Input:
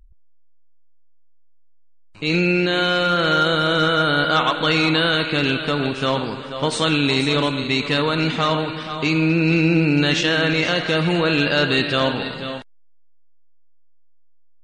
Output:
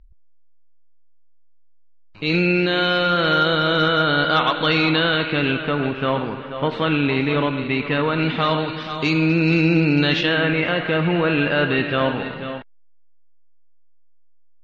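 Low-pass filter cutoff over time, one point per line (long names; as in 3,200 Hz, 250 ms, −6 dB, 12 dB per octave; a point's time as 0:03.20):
low-pass filter 24 dB per octave
0:04.65 4,700 Hz
0:05.78 2,800 Hz
0:08.05 2,800 Hz
0:08.94 6,100 Hz
0:09.86 6,100 Hz
0:10.52 2,800 Hz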